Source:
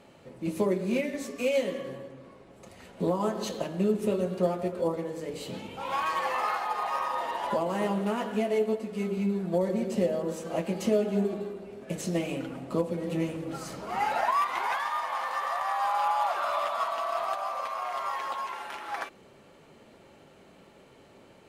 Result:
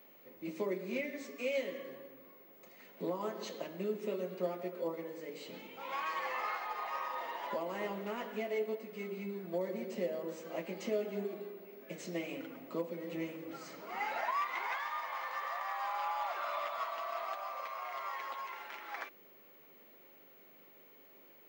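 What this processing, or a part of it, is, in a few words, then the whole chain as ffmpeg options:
old television with a line whistle: -af "highpass=f=190:w=0.5412,highpass=f=190:w=1.3066,equalizer=f=210:t=q:w=4:g=-5,equalizer=f=780:t=q:w=4:g=-3,equalizer=f=2100:t=q:w=4:g=7,lowpass=f=7100:w=0.5412,lowpass=f=7100:w=1.3066,aeval=exprs='val(0)+0.00316*sin(2*PI*15625*n/s)':c=same,volume=0.376"

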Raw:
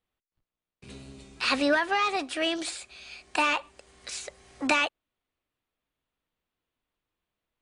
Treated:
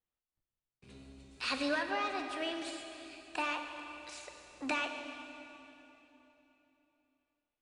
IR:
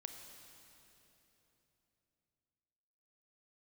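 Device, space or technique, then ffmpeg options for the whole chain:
swimming-pool hall: -filter_complex "[1:a]atrim=start_sample=2205[s0];[0:a][s0]afir=irnorm=-1:irlink=0,highshelf=f=5400:g=-5.5,asettb=1/sr,asplit=3[s1][s2][s3];[s1]atrim=end=1.314[s4];[s2]atrim=start=1.31:end=1.83,asetpts=PTS-STARTPTS,afade=t=in:d=0.004:c=qsin,afade=t=out:st=0.516:d=0.004:c=qsin,highshelf=f=4900:g=8[s5];[s3]atrim=start=1.826[s6];[s4][s5]acrossfade=d=0.004:c1=hsin:c2=qsin[s7];[s7][s6]acrossfade=d=0.004:c1=qsin:c2=hsin,volume=0.562"

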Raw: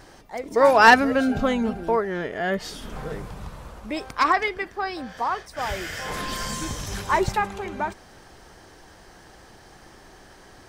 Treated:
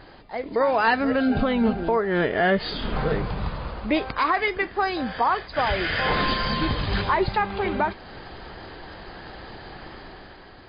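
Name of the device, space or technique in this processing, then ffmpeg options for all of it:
low-bitrate web radio: -af "dynaudnorm=f=210:g=7:m=2.37,alimiter=limit=0.2:level=0:latency=1:release=264,volume=1.26" -ar 11025 -c:a libmp3lame -b:a 24k

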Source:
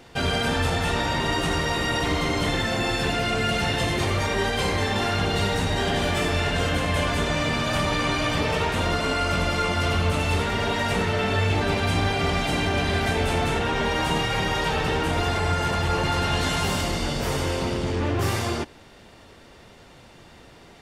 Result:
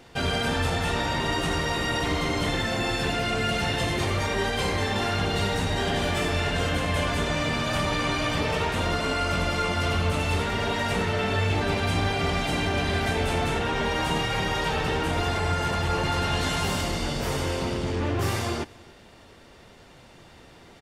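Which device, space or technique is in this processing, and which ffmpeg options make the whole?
ducked delay: -filter_complex "[0:a]asplit=3[s0][s1][s2];[s1]adelay=284,volume=0.447[s3];[s2]apad=whole_len=930355[s4];[s3][s4]sidechaincompress=threshold=0.00562:ratio=4:attack=16:release=1260[s5];[s0][s5]amix=inputs=2:normalize=0,volume=0.794"

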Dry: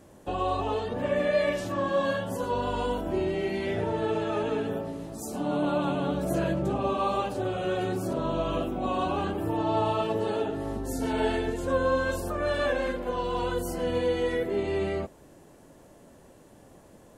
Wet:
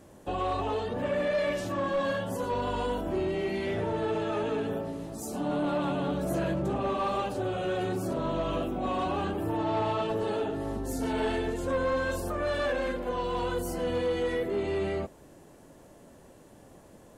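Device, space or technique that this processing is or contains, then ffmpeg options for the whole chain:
saturation between pre-emphasis and de-emphasis: -filter_complex "[0:a]asettb=1/sr,asplit=3[s0][s1][s2];[s0]atrim=end=9.654[s3];[s1]atrim=start=9.65:end=10.09,asetpts=PTS-STARTPTS,afade=t=in:d=0.004:c=qsin,afade=t=out:st=0.436:d=0.004:c=qsin,lowpass=f=8400:w=0.5412,lowpass=f=8400:w=1.3066[s4];[s2]atrim=start=10.086[s5];[s3][s4]acrossfade=d=0.004:c1=hsin:c2=qsin[s6];[s6][s5]acrossfade=d=0.004:c1=qsin:c2=hsin,highshelf=f=3000:g=8,asoftclip=type=tanh:threshold=0.0794,highshelf=f=3000:g=-8"

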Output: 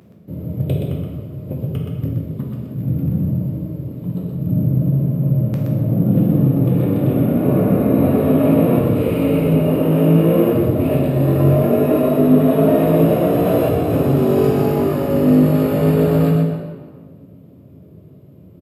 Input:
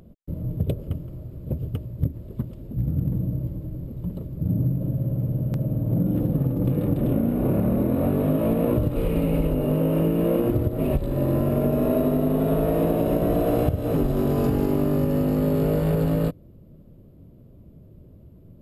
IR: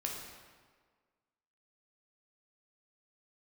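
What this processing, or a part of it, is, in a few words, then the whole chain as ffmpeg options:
PA in a hall: -filter_complex "[0:a]highpass=f=100:w=0.5412,highpass=f=100:w=1.3066,equalizer=f=2400:t=o:w=0.77:g=3,aecho=1:1:123:0.531[s0];[1:a]atrim=start_sample=2205[s1];[s0][s1]afir=irnorm=-1:irlink=0,volume=1.68"

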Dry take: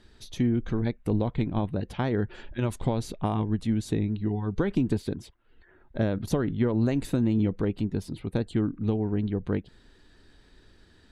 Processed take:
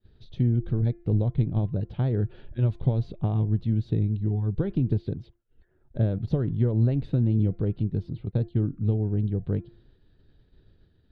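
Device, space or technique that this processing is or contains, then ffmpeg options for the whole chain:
hearing-loss simulation: -filter_complex "[0:a]bandreject=f=345.3:t=h:w=4,bandreject=f=690.6:t=h:w=4,bandreject=f=1035.9:t=h:w=4,bandreject=f=1381.2:t=h:w=4,bandreject=f=1726.5:t=h:w=4,bandreject=f=2071.8:t=h:w=4,bandreject=f=2417.1:t=h:w=4,asettb=1/sr,asplit=3[s0][s1][s2];[s0]atrim=end=8.254[s3];[s1]atrim=start=8.25:end=8.73,asetpts=PTS-STARTPTS,afade=t=in:d=0.004:c=qsin,afade=t=out:st=0.476:d=0.004:c=qsin,agate=range=0.355:threshold=0.0251:ratio=16:detection=peak[s4];[s2]atrim=start=8.726[s5];[s3][s4]acrossfade=d=0.004:c1=hsin:c2=qsin[s6];[s6][s5]acrossfade=d=0.004:c1=qsin:c2=hsin,lowpass=1700,agate=range=0.0224:threshold=0.00251:ratio=3:detection=peak,equalizer=f=125:t=o:w=1:g=8,equalizer=f=250:t=o:w=1:g=-5,equalizer=f=1000:t=o:w=1:g=-10,equalizer=f=2000:t=o:w=1:g=-8,equalizer=f=4000:t=o:w=1:g=10,equalizer=f=8000:t=o:w=1:g=-9"

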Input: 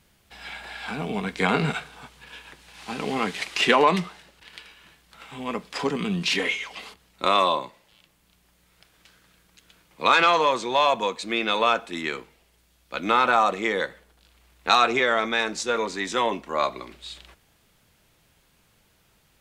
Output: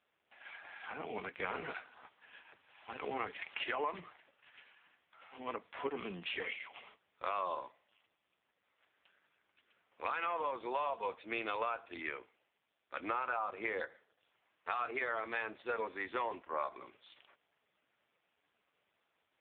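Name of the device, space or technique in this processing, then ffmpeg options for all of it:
voicemail: -af "highpass=390,lowpass=3000,acompressor=threshold=0.0631:ratio=10,volume=0.447" -ar 8000 -c:a libopencore_amrnb -b:a 5150

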